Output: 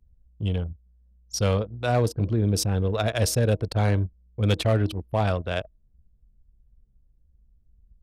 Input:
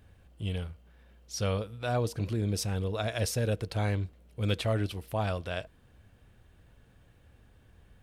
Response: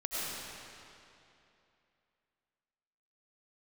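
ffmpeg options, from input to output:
-filter_complex "[0:a]bandreject=frequency=314.9:width_type=h:width=4,bandreject=frequency=629.8:width_type=h:width=4,bandreject=frequency=944.7:width_type=h:width=4,bandreject=frequency=1259.6:width_type=h:width=4,bandreject=frequency=1574.5:width_type=h:width=4,bandreject=frequency=1889.4:width_type=h:width=4,bandreject=frequency=2204.3:width_type=h:width=4,bandreject=frequency=2519.2:width_type=h:width=4,acrossover=split=350|2400[link_01][link_02][link_03];[link_02]adynamicsmooth=sensitivity=7.5:basefreq=1900[link_04];[link_01][link_04][link_03]amix=inputs=3:normalize=0,anlmdn=0.398,volume=22dB,asoftclip=hard,volume=-22dB,volume=7.5dB"

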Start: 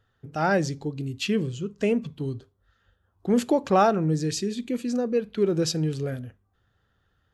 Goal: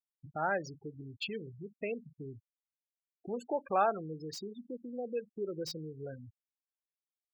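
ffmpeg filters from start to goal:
ffmpeg -i in.wav -filter_complex "[0:a]afftfilt=real='re*gte(hypot(re,im),0.0501)':imag='im*gte(hypot(re,im),0.0501)':win_size=1024:overlap=0.75,acrossover=split=490|5100[link_01][link_02][link_03];[link_01]acompressor=threshold=-39dB:ratio=4[link_04];[link_03]aeval=exprs='0.0133*(abs(mod(val(0)/0.0133+3,4)-2)-1)':channel_layout=same[link_05];[link_04][link_02][link_05]amix=inputs=3:normalize=0,volume=-7dB" out.wav

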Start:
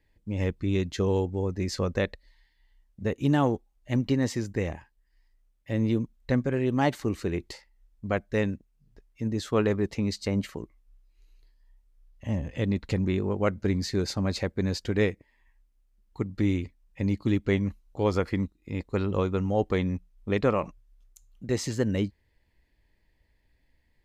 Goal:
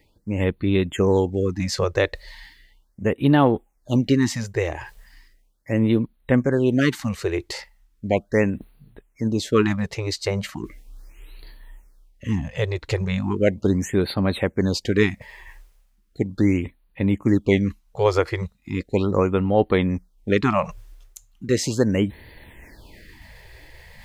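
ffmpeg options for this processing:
ffmpeg -i in.wav -af "lowshelf=frequency=83:gain=-9.5,areverse,acompressor=mode=upward:threshold=-35dB:ratio=2.5,areverse,afftfilt=real='re*(1-between(b*sr/1024,210*pow(6700/210,0.5+0.5*sin(2*PI*0.37*pts/sr))/1.41,210*pow(6700/210,0.5+0.5*sin(2*PI*0.37*pts/sr))*1.41))':imag='im*(1-between(b*sr/1024,210*pow(6700/210,0.5+0.5*sin(2*PI*0.37*pts/sr))/1.41,210*pow(6700/210,0.5+0.5*sin(2*PI*0.37*pts/sr))*1.41))':win_size=1024:overlap=0.75,volume=8dB" out.wav

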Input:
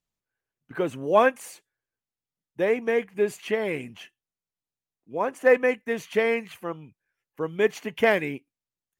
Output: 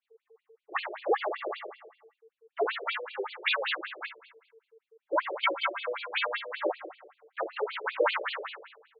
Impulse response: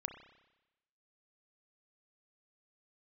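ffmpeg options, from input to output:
-filter_complex "[0:a]aeval=exprs='val(0)+0.00178*sin(2*PI*440*n/s)':channel_layout=same,acrossover=split=470|3000[link_01][link_02][link_03];[link_01]acompressor=threshold=-36dB:ratio=4[link_04];[link_04][link_02][link_03]amix=inputs=3:normalize=0,asplit=2[link_05][link_06];[link_06]equalizer=frequency=4700:width=0.34:gain=2.5[link_07];[1:a]atrim=start_sample=2205,asetrate=43659,aresample=44100,lowpass=3400[link_08];[link_07][link_08]afir=irnorm=-1:irlink=0,volume=6.5dB[link_09];[link_05][link_09]amix=inputs=2:normalize=0,asplit=4[link_10][link_11][link_12][link_13];[link_11]asetrate=35002,aresample=44100,atempo=1.25992,volume=-2dB[link_14];[link_12]asetrate=66075,aresample=44100,atempo=0.66742,volume=-3dB[link_15];[link_13]asetrate=88200,aresample=44100,atempo=0.5,volume=-9dB[link_16];[link_10][link_14][link_15][link_16]amix=inputs=4:normalize=0,afreqshift=-430,adynamicequalizer=threshold=0.0316:dfrequency=2300:dqfactor=1:tfrequency=2300:tqfactor=1:attack=5:release=100:ratio=0.375:range=1.5:mode=cutabove:tftype=bell,acompressor=threshold=-20dB:ratio=6,afftfilt=real='re*between(b*sr/1024,440*pow(3400/440,0.5+0.5*sin(2*PI*5.2*pts/sr))/1.41,440*pow(3400/440,0.5+0.5*sin(2*PI*5.2*pts/sr))*1.41)':imag='im*between(b*sr/1024,440*pow(3400/440,0.5+0.5*sin(2*PI*5.2*pts/sr))/1.41,440*pow(3400/440,0.5+0.5*sin(2*PI*5.2*pts/sr))*1.41)':win_size=1024:overlap=0.75,volume=4dB"

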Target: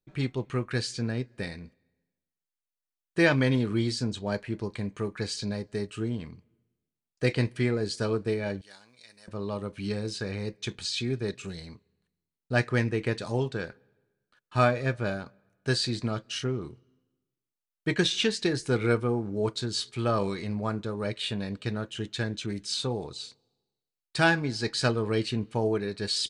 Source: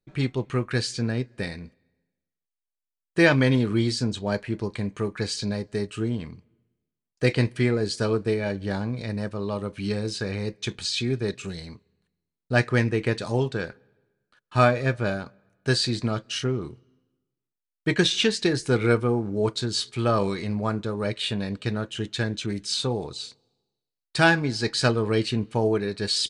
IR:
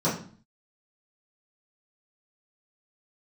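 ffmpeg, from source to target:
-filter_complex "[0:a]asettb=1/sr,asplit=3[link_01][link_02][link_03];[link_01]atrim=end=8.614[link_04];[link_02]atrim=start=8.61:end=9.28,asetpts=PTS-STARTPTS,afade=type=in:duration=0.004:curve=qsin,afade=type=out:start_time=0.666:duration=0.004:curve=qsin,aderivative[link_05];[link_03]atrim=start=9.276[link_06];[link_04][link_05]acrossfade=duration=0.004:curve1=hsin:curve2=qsin[link_07];[link_07][link_06]acrossfade=duration=0.004:curve1=qsin:curve2=hsin,volume=-4dB"

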